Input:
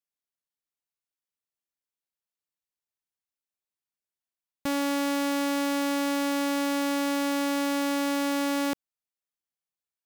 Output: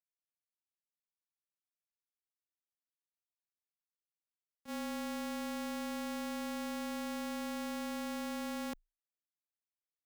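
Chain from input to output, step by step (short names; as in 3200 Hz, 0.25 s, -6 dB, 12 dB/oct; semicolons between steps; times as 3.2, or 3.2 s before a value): gate -24 dBFS, range -34 dB; frequency shift -28 Hz; gain +6.5 dB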